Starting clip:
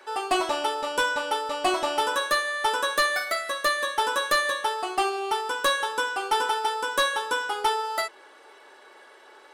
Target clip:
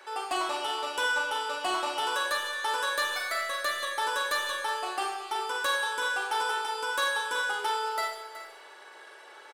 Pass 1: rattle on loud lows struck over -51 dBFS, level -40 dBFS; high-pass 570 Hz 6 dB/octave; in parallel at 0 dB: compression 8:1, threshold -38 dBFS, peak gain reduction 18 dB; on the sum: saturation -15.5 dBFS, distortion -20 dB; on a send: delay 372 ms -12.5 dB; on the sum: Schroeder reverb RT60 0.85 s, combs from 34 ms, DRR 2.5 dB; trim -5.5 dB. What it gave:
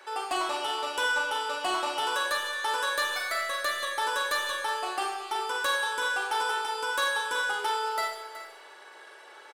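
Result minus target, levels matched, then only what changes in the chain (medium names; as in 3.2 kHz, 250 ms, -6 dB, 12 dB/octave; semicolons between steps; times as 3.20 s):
compression: peak gain reduction -6.5 dB
change: compression 8:1, threshold -45.5 dBFS, peak gain reduction 24.5 dB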